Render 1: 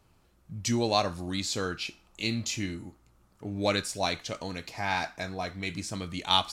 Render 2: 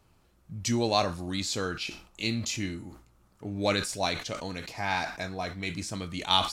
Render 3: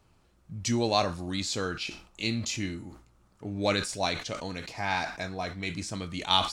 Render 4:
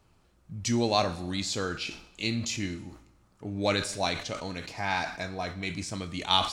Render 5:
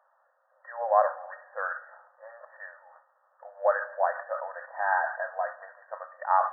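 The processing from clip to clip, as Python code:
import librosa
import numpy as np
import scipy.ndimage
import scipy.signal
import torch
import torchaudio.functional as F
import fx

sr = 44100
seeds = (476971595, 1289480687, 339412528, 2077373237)

y1 = fx.sustainer(x, sr, db_per_s=110.0)
y2 = fx.peak_eq(y1, sr, hz=13000.0, db=-11.5, octaves=0.32)
y3 = fx.rev_schroeder(y2, sr, rt60_s=0.95, comb_ms=30, drr_db=15.0)
y4 = fx.brickwall_bandpass(y3, sr, low_hz=500.0, high_hz=1900.0)
y4 = y4 * librosa.db_to_amplitude(5.0)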